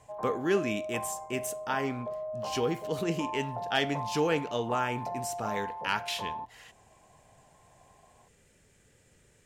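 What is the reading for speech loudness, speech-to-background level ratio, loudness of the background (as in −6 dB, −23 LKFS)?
−32.5 LKFS, 5.5 dB, −38.0 LKFS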